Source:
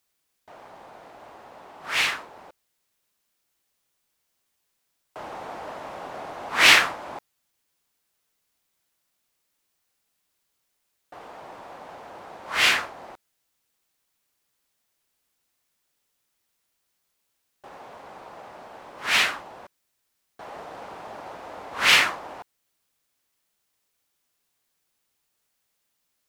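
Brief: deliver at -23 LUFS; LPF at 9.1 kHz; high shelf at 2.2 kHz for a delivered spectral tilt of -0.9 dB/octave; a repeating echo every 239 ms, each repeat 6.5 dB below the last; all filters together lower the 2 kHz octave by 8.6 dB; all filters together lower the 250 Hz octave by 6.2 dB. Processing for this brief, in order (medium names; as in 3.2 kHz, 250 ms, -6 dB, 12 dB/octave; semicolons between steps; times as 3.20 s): low-pass 9.1 kHz; peaking EQ 250 Hz -8.5 dB; peaking EQ 2 kHz -6 dB; treble shelf 2.2 kHz -8 dB; feedback delay 239 ms, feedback 47%, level -6.5 dB; trim +7.5 dB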